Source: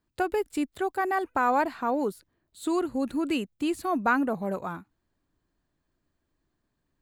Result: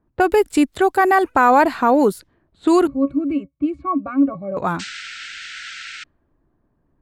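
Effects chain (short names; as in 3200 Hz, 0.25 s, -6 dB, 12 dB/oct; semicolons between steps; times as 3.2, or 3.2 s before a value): 4.79–6.04 painted sound noise 1300–8600 Hz -41 dBFS; in parallel at +1 dB: limiter -20 dBFS, peak gain reduction 8.5 dB; 2.87–4.57 on the sum: octave resonator C#, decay 0.1 s; low-pass opened by the level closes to 1000 Hz, open at -22 dBFS; gain +6.5 dB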